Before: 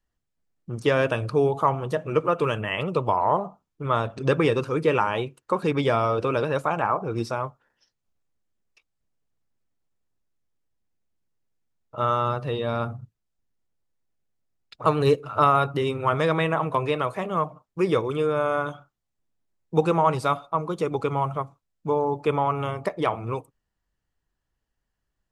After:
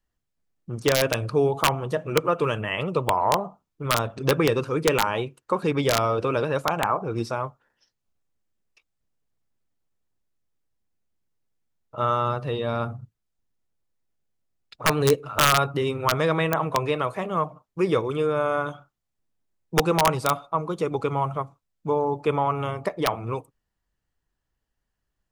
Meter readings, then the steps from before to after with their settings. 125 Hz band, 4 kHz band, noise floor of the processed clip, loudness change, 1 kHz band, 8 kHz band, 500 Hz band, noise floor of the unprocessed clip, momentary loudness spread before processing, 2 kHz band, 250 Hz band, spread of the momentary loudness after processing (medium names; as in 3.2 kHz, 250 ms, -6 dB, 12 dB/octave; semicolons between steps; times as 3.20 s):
0.0 dB, +6.5 dB, -81 dBFS, 0.0 dB, -0.5 dB, no reading, -0.5 dB, -81 dBFS, 8 LU, +2.0 dB, 0.0 dB, 9 LU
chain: integer overflow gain 10 dB